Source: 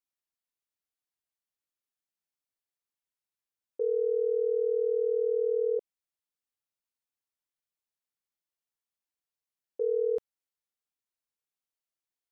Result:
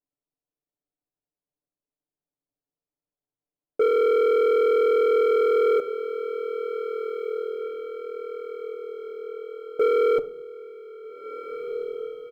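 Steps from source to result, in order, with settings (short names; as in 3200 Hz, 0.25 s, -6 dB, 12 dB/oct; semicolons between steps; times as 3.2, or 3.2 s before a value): Chebyshev low-pass 540 Hz, order 2; comb 6.8 ms, depth 75%; in parallel at +3 dB: limiter -32.5 dBFS, peak gain reduction 14 dB; on the sum: sample leveller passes 2; diffused feedback echo 1.695 s, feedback 54%, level -10 dB; on a send at -11 dB: reverb RT60 0.55 s, pre-delay 3 ms; on the sum: gain +2.5 dB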